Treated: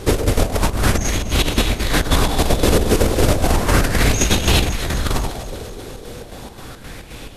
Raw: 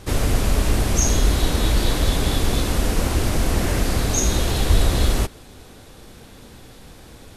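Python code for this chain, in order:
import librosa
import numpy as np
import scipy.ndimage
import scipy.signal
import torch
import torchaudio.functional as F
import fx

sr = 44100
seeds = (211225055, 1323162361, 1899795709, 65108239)

p1 = fx.over_compress(x, sr, threshold_db=-20.0, ratio=-0.5)
p2 = fx.chopper(p1, sr, hz=3.8, depth_pct=60, duty_pct=65)
p3 = p2 + fx.echo_alternate(p2, sr, ms=123, hz=900.0, feedback_pct=79, wet_db=-9.0, dry=0)
p4 = fx.bell_lfo(p3, sr, hz=0.34, low_hz=420.0, high_hz=2800.0, db=8)
y = p4 * librosa.db_to_amplitude(5.0)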